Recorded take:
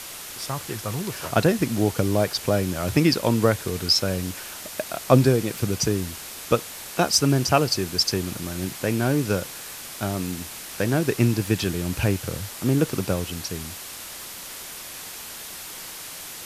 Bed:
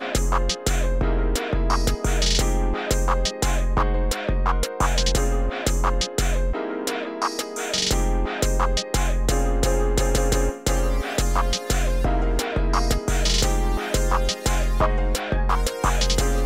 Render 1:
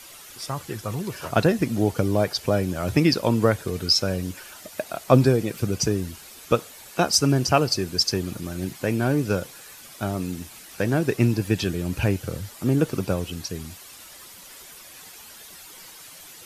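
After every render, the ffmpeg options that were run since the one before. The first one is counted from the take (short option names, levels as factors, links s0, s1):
-af "afftdn=nr=10:nf=-38"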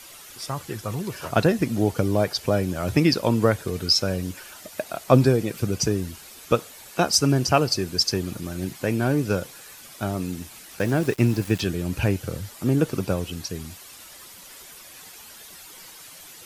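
-filter_complex "[0:a]asettb=1/sr,asplit=3[s0][s1][s2];[s0]atrim=end=10.794[s3];[s1]atrim=start=10.79:end=11.61,asetpts=PTS-STARTPTS,afade=t=in:d=0.004:c=qsin,afade=t=out:st=0.816:d=0.004:c=qsin,aeval=exprs='val(0)*gte(abs(val(0)),0.0168)':c=same[s4];[s2]atrim=start=11.606[s5];[s3][s4]acrossfade=d=0.004:c1=hsin:c2=qsin[s6];[s6][s5]acrossfade=d=0.004:c1=qsin:c2=hsin"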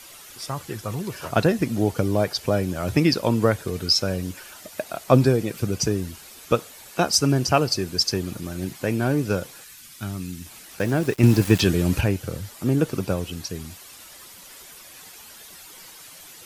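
-filter_complex "[0:a]asettb=1/sr,asplit=3[s0][s1][s2];[s0]atrim=end=9.644[s3];[s1]atrim=start=9.64:end=10.46,asetpts=PTS-STARTPTS,afade=t=in:d=0.004:c=qsin,afade=t=out:st=0.816:d=0.004:c=qsin,equalizer=f=600:t=o:w=1.7:g=-14.5[s4];[s2]atrim=start=10.456[s5];[s3][s4]acrossfade=d=0.004:c1=hsin:c2=qsin[s6];[s6][s5]acrossfade=d=0.004:c1=qsin:c2=hsin,asettb=1/sr,asplit=3[s7][s8][s9];[s7]atrim=end=11.234[s10];[s8]atrim=start=11.23:end=12.01,asetpts=PTS-STARTPTS,afade=t=in:d=0.004:c=qsin,afade=t=out:st=0.776:d=0.004:c=qsin,acontrast=66[s11];[s9]atrim=start=12.006[s12];[s10][s11]acrossfade=d=0.004:c1=hsin:c2=qsin[s13];[s13][s12]acrossfade=d=0.004:c1=qsin:c2=hsin"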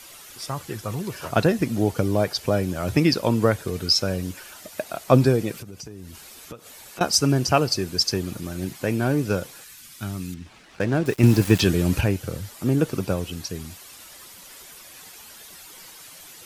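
-filter_complex "[0:a]asettb=1/sr,asplit=3[s0][s1][s2];[s0]atrim=end=5.564[s3];[s1]atrim=start=5.56:end=7.01,asetpts=PTS-STARTPTS,afade=t=in:d=0.004:c=qsin,afade=t=out:st=1.446:d=0.004:c=qsin,acompressor=threshold=0.0178:ratio=8:attack=3.2:release=140:knee=1:detection=peak[s4];[s2]atrim=start=7.006[s5];[s3][s4]acrossfade=d=0.004:c1=hsin:c2=qsin[s6];[s6][s5]acrossfade=d=0.004:c1=qsin:c2=hsin,asettb=1/sr,asplit=3[s7][s8][s9];[s7]atrim=end=10.344[s10];[s8]atrim=start=10.34:end=11.06,asetpts=PTS-STARTPTS,afade=t=in:d=0.004:c=qsin,afade=t=out:st=0.716:d=0.004:c=qsin,adynamicsmooth=sensitivity=8:basefreq=3000[s11];[s9]atrim=start=11.056[s12];[s10][s11]acrossfade=d=0.004:c1=hsin:c2=qsin[s13];[s13][s12]acrossfade=d=0.004:c1=qsin:c2=hsin"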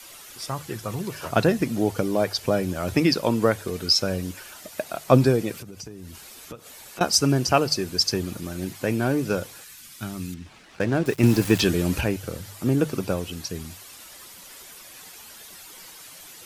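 -af "bandreject=f=50:t=h:w=6,bandreject=f=100:t=h:w=6,bandreject=f=150:t=h:w=6,adynamicequalizer=threshold=0.0158:dfrequency=110:dqfactor=1.1:tfrequency=110:tqfactor=1.1:attack=5:release=100:ratio=0.375:range=3:mode=cutabove:tftype=bell"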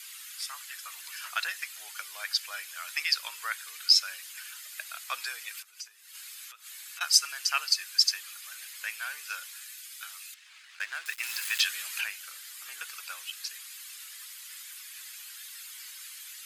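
-af "highpass=f=1500:w=0.5412,highpass=f=1500:w=1.3066,bandreject=f=5700:w=15"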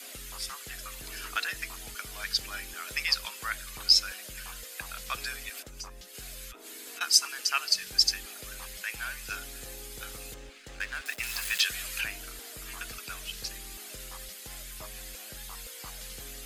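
-filter_complex "[1:a]volume=0.0501[s0];[0:a][s0]amix=inputs=2:normalize=0"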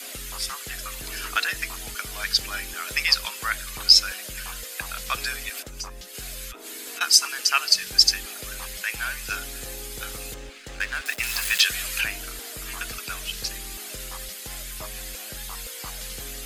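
-af "volume=2.24,alimiter=limit=0.794:level=0:latency=1"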